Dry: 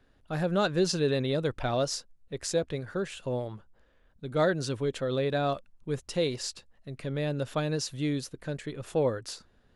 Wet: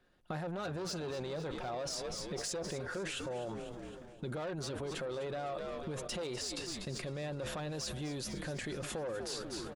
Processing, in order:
comb filter 5.6 ms, depth 38%
soft clipping −26 dBFS, distortion −10 dB
on a send: echo with shifted repeats 244 ms, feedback 46%, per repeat −90 Hz, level −15 dB
on the sum: dynamic equaliser 740 Hz, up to +5 dB, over −42 dBFS, Q 0.79
brickwall limiter −34 dBFS, peak gain reduction 14 dB
downward compressor 12 to 1, threshold −48 dBFS, peak gain reduction 11.5 dB
noise gate −53 dBFS, range −16 dB
low-shelf EQ 110 Hz −9 dB
echo with a time of its own for lows and highs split 1,300 Hz, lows 351 ms, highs 254 ms, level −15 dB
level that may fall only so fast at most 31 dB per second
level +12 dB

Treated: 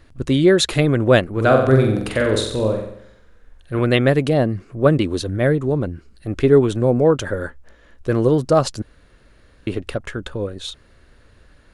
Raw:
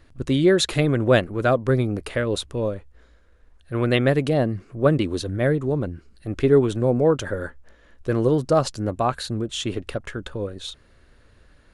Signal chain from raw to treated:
0:01.32–0:03.79: flutter between parallel walls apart 7.8 metres, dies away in 0.71 s
0:08.82–0:09.67: fill with room tone
level +3.5 dB

